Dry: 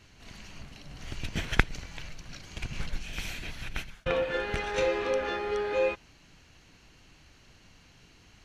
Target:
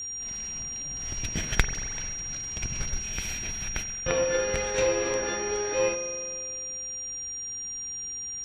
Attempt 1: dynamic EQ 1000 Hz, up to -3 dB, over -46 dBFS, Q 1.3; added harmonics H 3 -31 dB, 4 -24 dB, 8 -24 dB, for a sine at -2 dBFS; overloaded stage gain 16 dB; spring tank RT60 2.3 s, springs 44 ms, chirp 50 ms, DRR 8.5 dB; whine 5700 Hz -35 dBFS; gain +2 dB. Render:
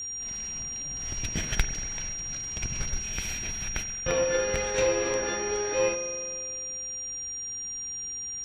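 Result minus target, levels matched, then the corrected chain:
overloaded stage: distortion +11 dB
dynamic EQ 1000 Hz, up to -3 dB, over -46 dBFS, Q 1.3; added harmonics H 3 -31 dB, 4 -24 dB, 8 -24 dB, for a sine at -2 dBFS; overloaded stage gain 8 dB; spring tank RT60 2.3 s, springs 44 ms, chirp 50 ms, DRR 8.5 dB; whine 5700 Hz -35 dBFS; gain +2 dB

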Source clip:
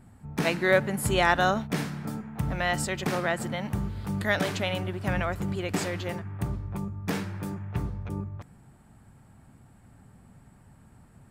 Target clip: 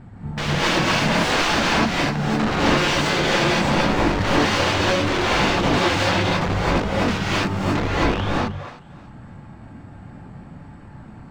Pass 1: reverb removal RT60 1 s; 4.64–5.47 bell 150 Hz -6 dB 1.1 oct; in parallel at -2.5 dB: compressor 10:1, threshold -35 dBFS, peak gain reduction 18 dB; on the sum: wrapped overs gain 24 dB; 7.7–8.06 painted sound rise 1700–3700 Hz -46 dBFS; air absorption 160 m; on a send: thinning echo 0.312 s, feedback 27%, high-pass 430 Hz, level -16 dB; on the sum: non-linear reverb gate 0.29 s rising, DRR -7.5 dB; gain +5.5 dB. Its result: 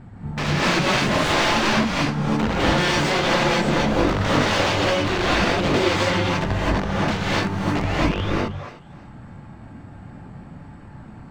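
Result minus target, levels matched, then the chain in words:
compressor: peak gain reduction +10.5 dB
reverb removal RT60 1 s; 4.64–5.47 bell 150 Hz -6 dB 1.1 oct; in parallel at -2.5 dB: compressor 10:1, threshold -23.5 dBFS, peak gain reduction 7.5 dB; on the sum: wrapped overs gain 24 dB; 7.7–8.06 painted sound rise 1700–3700 Hz -46 dBFS; air absorption 160 m; on a send: thinning echo 0.312 s, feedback 27%, high-pass 430 Hz, level -16 dB; on the sum: non-linear reverb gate 0.29 s rising, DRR -7.5 dB; gain +5.5 dB

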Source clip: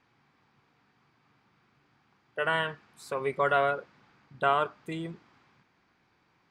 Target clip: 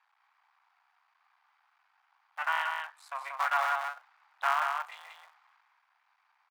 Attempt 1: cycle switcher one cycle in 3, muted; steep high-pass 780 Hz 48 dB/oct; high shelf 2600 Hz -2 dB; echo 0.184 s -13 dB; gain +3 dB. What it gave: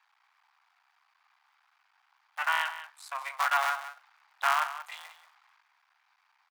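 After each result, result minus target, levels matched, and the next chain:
echo-to-direct -8.5 dB; 4000 Hz band +3.5 dB
cycle switcher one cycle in 3, muted; steep high-pass 780 Hz 48 dB/oct; high shelf 2600 Hz -2 dB; echo 0.184 s -4.5 dB; gain +3 dB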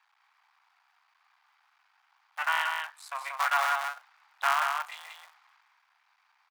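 4000 Hz band +4.0 dB
cycle switcher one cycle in 3, muted; steep high-pass 780 Hz 48 dB/oct; high shelf 2600 Hz -12 dB; echo 0.184 s -4.5 dB; gain +3 dB

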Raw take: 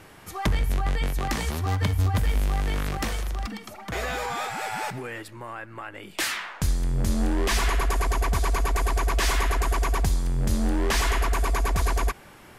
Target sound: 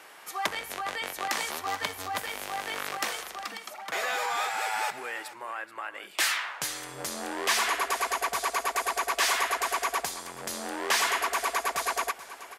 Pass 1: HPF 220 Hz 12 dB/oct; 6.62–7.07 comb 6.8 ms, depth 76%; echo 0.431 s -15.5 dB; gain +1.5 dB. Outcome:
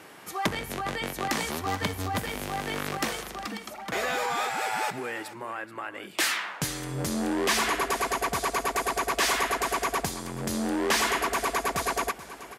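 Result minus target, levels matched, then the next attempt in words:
250 Hz band +11.5 dB
HPF 620 Hz 12 dB/oct; 6.62–7.07 comb 6.8 ms, depth 76%; echo 0.431 s -15.5 dB; gain +1.5 dB

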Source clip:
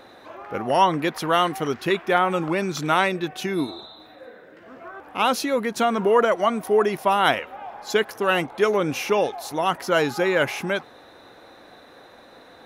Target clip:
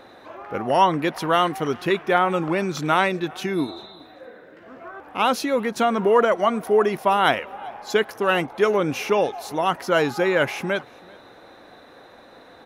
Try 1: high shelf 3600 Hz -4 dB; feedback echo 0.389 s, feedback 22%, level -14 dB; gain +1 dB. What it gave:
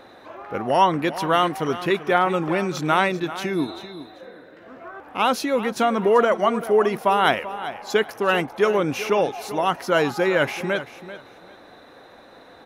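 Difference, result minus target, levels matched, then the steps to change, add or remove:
echo-to-direct +11.5 dB
change: feedback echo 0.389 s, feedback 22%, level -25.5 dB

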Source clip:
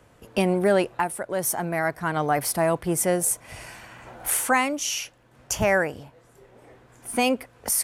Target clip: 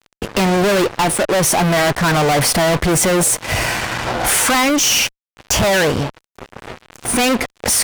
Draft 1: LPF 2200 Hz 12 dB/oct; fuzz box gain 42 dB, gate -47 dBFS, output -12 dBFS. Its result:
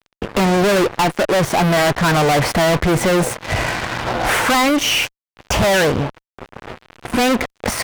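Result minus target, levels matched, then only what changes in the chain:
8000 Hz band -8.0 dB
change: LPF 7000 Hz 12 dB/oct

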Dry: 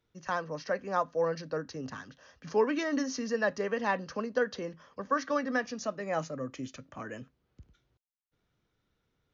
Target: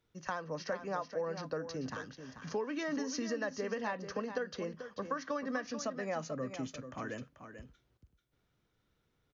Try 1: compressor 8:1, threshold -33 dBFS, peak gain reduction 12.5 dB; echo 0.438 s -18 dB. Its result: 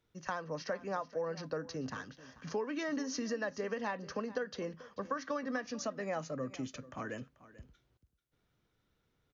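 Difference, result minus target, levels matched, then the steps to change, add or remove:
echo-to-direct -8 dB
change: echo 0.438 s -10 dB

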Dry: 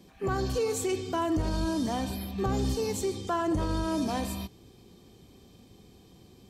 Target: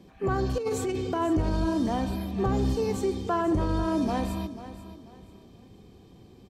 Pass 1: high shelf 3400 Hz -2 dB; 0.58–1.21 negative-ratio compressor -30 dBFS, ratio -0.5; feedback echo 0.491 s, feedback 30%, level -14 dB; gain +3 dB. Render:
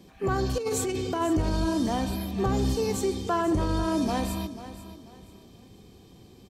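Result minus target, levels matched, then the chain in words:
8000 Hz band +7.0 dB
high shelf 3400 Hz -11 dB; 0.58–1.21 negative-ratio compressor -30 dBFS, ratio -0.5; feedback echo 0.491 s, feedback 30%, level -14 dB; gain +3 dB

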